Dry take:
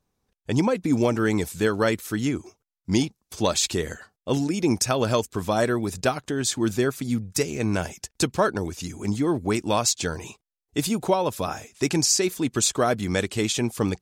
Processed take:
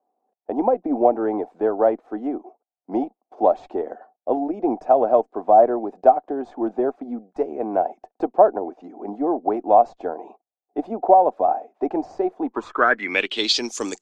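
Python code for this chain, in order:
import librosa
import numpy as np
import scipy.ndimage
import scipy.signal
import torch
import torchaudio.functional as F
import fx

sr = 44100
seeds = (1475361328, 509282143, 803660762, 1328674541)

y = scipy.signal.sosfilt(scipy.signal.butter(6, 250.0, 'highpass', fs=sr, output='sos'), x)
y = fx.cheby_harmonics(y, sr, harmonics=(4, 6, 8), levels_db=(-24, -23, -41), full_scale_db=-7.5)
y = fx.filter_sweep_lowpass(y, sr, from_hz=730.0, to_hz=7200.0, start_s=12.39, end_s=13.82, q=8.0)
y = y * 10.0 ** (-1.0 / 20.0)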